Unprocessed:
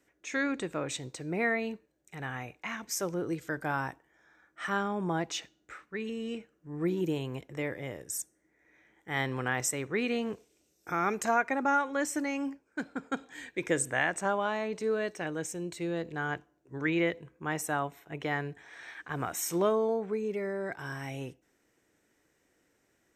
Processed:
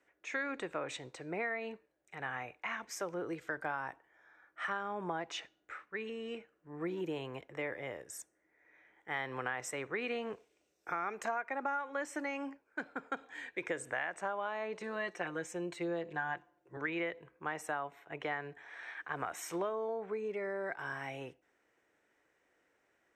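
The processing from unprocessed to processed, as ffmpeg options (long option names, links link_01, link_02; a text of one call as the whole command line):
ffmpeg -i in.wav -filter_complex "[0:a]asettb=1/sr,asplit=3[link_01][link_02][link_03];[link_01]atrim=end=14.804[link_04];[link_02]atrim=start=14.8:end=16.77,asetpts=PTS-STARTPTS,afade=type=in:duration=0.004:curve=qsin,afade=type=out:start_time=1.966:duration=0.004:curve=qsin,aecho=1:1:5.7:0.78,atrim=end_sample=86877[link_05];[link_03]atrim=start=16.766[link_06];[link_04][link_05]acrossfade=duration=0.004:curve1=hsin:curve2=qsin[link_07];[link_07][link_06]acrossfade=duration=0.004:curve1=qsin:curve2=hsin,lowpass=12000,acrossover=split=440 3000:gain=0.251 1 0.251[link_08][link_09][link_10];[link_08][link_09][link_10]amix=inputs=3:normalize=0,acompressor=threshold=-34dB:ratio=6,volume=1dB" out.wav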